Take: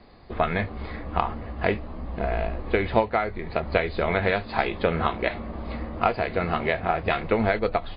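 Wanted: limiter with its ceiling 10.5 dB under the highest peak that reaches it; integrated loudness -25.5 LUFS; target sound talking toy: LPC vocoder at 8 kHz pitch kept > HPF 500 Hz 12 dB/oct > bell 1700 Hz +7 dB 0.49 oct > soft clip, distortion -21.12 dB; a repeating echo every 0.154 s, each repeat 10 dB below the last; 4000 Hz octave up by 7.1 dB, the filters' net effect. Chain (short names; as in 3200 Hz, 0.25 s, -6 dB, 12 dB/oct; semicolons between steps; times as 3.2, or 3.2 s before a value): bell 4000 Hz +8.5 dB; limiter -15.5 dBFS; feedback echo 0.154 s, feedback 32%, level -10 dB; LPC vocoder at 8 kHz pitch kept; HPF 500 Hz 12 dB/oct; bell 1700 Hz +7 dB 0.49 oct; soft clip -16.5 dBFS; gain +5 dB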